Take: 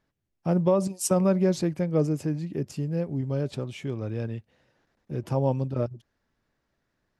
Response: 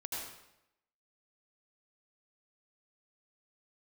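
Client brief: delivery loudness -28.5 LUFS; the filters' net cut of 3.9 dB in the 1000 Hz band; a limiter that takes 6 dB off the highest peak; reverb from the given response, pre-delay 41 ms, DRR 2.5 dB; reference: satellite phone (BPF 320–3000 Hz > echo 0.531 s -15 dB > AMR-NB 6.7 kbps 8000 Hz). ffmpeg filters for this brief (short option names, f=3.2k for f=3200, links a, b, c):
-filter_complex "[0:a]equalizer=f=1k:t=o:g=-5,alimiter=limit=-18dB:level=0:latency=1,asplit=2[a][b];[1:a]atrim=start_sample=2205,adelay=41[c];[b][c]afir=irnorm=-1:irlink=0,volume=-3.5dB[d];[a][d]amix=inputs=2:normalize=0,highpass=320,lowpass=3k,aecho=1:1:531:0.178,volume=5dB" -ar 8000 -c:a libopencore_amrnb -b:a 6700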